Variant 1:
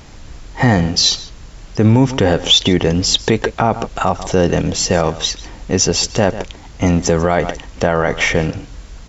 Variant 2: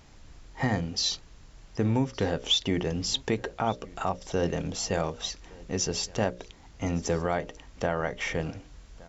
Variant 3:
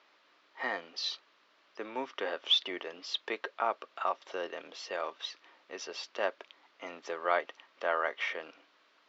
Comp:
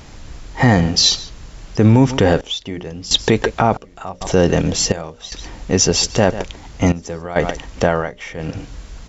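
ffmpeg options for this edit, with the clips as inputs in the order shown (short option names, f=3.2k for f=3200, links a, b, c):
-filter_complex "[1:a]asplit=5[a][b][c][d][e];[0:a]asplit=6[f][g][h][i][j][k];[f]atrim=end=2.412[l];[a]atrim=start=2.408:end=3.112[m];[g]atrim=start=3.108:end=3.772[n];[b]atrim=start=3.768:end=4.212[o];[h]atrim=start=4.208:end=4.922[p];[c]atrim=start=4.918:end=5.322[q];[i]atrim=start=5.318:end=6.922[r];[d]atrim=start=6.918:end=7.362[s];[j]atrim=start=7.358:end=8.12[t];[e]atrim=start=7.88:end=8.61[u];[k]atrim=start=8.37[v];[l][m]acrossfade=d=0.004:c1=hsin:c2=hsin[w];[w][n]acrossfade=d=0.004:c1=hsin:c2=hsin[x];[x][o]acrossfade=d=0.004:c1=hsin:c2=hsin[y];[y][p]acrossfade=d=0.004:c1=hsin:c2=hsin[z];[z][q]acrossfade=d=0.004:c1=hsin:c2=hsin[aa];[aa][r]acrossfade=d=0.004:c1=hsin:c2=hsin[ab];[ab][s]acrossfade=d=0.004:c1=hsin:c2=hsin[ac];[ac][t]acrossfade=d=0.004:c1=hsin:c2=hsin[ad];[ad][u]acrossfade=d=0.24:c1=tri:c2=tri[ae];[ae][v]acrossfade=d=0.24:c1=tri:c2=tri"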